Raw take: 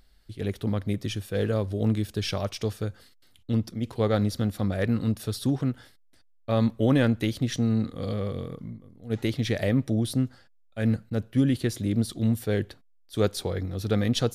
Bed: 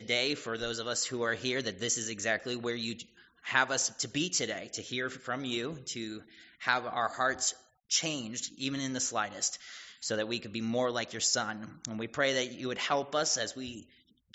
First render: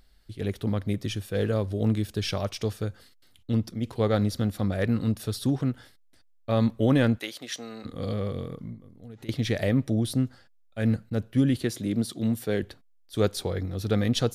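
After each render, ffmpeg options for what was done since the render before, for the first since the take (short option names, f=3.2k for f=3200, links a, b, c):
-filter_complex "[0:a]asplit=3[a][b][c];[a]afade=t=out:st=7.17:d=0.02[d];[b]highpass=620,afade=t=in:st=7.17:d=0.02,afade=t=out:st=7.84:d=0.02[e];[c]afade=t=in:st=7.84:d=0.02[f];[d][e][f]amix=inputs=3:normalize=0,asettb=1/sr,asplit=3[g][h][i];[g]atrim=end=8.744[j];[h]atrim=start=8.74:end=9.29,asetpts=PTS-STARTPTS,afade=t=in:d=0.004:c=qsin,afade=t=out:st=0.546:d=0.004:c=qsin,acompressor=threshold=-39dB:ratio=16:attack=3.2:release=140:knee=1:detection=peak[k];[i]atrim=start=9.286[l];[j][k]acrossfade=d=0.004:c1=hsin:c2=qsin[m];[m][l]acrossfade=d=0.004:c1=qsin:c2=hsin,asettb=1/sr,asplit=3[n][o][p];[n]atrim=end=11.634[q];[o]atrim=start=11.63:end=12.63,asetpts=PTS-STARTPTS,afade=t=in:d=0.004:c=qsin,afade=t=out:st=0.996:d=0.004:c=qsin,highpass=140[r];[p]atrim=start=12.626[s];[q][r]acrossfade=d=0.004:c1=hsin:c2=qsin[t];[t][s]acrossfade=d=0.004:c1=qsin:c2=hsin"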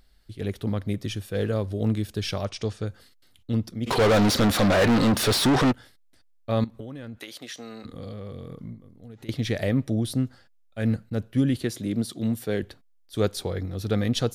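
-filter_complex "[0:a]asettb=1/sr,asplit=3[a][b][c];[a]atrim=end=2.454[d];[b]atrim=start=2.45:end=2.87,asetpts=PTS-STARTPTS,afade=t=in:d=0.004:c=qsin,afade=t=out:st=0.416:d=0.004:c=qsin,lowpass=f=8.6k:w=0.5412,lowpass=f=8.6k:w=1.3066[e];[c]atrim=start=2.866[f];[d][e]acrossfade=d=0.004:c1=hsin:c2=qsin[g];[g][f]acrossfade=d=0.004:c1=qsin:c2=hsin,asplit=3[h][i][j];[h]afade=t=out:st=3.86:d=0.02[k];[i]asplit=2[l][m];[m]highpass=f=720:p=1,volume=36dB,asoftclip=type=tanh:threshold=-12.5dB[n];[l][n]amix=inputs=2:normalize=0,lowpass=f=3.9k:p=1,volume=-6dB,afade=t=in:st=3.86:d=0.02,afade=t=out:st=5.71:d=0.02[o];[j]afade=t=in:st=5.71:d=0.02[p];[k][o][p]amix=inputs=3:normalize=0,asettb=1/sr,asplit=3[q][r][s];[q]atrim=end=6.644[t];[r]atrim=start=6.64:end=8.64,asetpts=PTS-STARTPTS,afade=t=in:d=0.004:c=qsin,afade=t=out:st=1.996:d=0.004:c=qsin,acompressor=threshold=-33dB:ratio=20:attack=3.2:release=140:knee=1:detection=peak[u];[s]atrim=start=8.636[v];[t][u]acrossfade=d=0.004:c1=hsin:c2=qsin[w];[w][v]acrossfade=d=0.004:c1=qsin:c2=hsin"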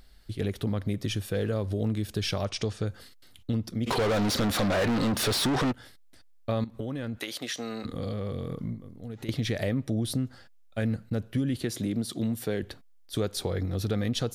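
-filter_complex "[0:a]asplit=2[a][b];[b]alimiter=limit=-23dB:level=0:latency=1,volume=-2.5dB[c];[a][c]amix=inputs=2:normalize=0,acompressor=threshold=-27dB:ratio=3"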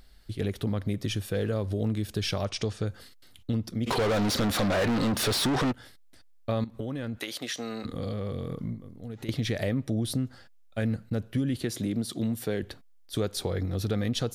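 -af anull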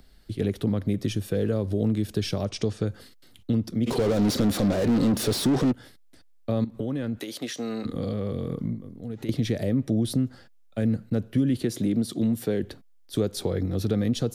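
-filter_complex "[0:a]acrossover=split=140|500|4400[a][b][c][d];[b]acontrast=61[e];[c]alimiter=level_in=5.5dB:limit=-24dB:level=0:latency=1:release=215,volume=-5.5dB[f];[a][e][f][d]amix=inputs=4:normalize=0"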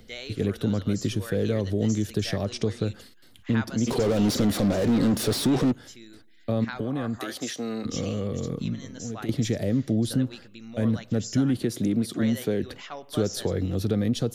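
-filter_complex "[1:a]volume=-9dB[a];[0:a][a]amix=inputs=2:normalize=0"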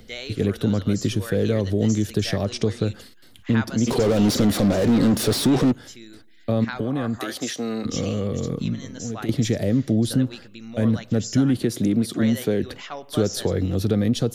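-af "volume=4dB"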